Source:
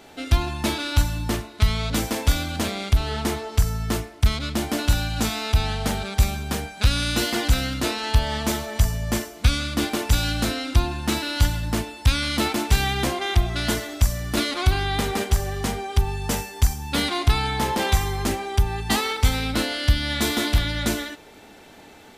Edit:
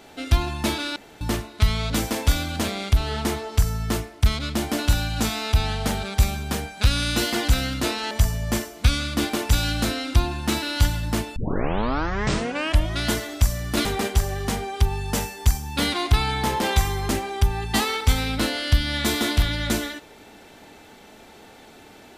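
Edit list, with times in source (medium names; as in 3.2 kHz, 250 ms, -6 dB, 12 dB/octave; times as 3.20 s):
0.96–1.21 s: room tone
8.11–8.71 s: delete
11.96 s: tape start 1.64 s
14.45–15.01 s: delete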